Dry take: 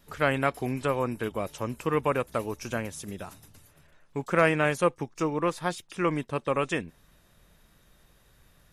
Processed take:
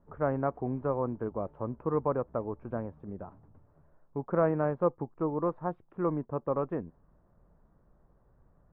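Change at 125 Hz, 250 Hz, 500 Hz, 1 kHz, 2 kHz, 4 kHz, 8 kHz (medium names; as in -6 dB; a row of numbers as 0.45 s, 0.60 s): -2.5 dB, -2.5 dB, -2.5 dB, -5.5 dB, -17.0 dB, under -35 dB, under -35 dB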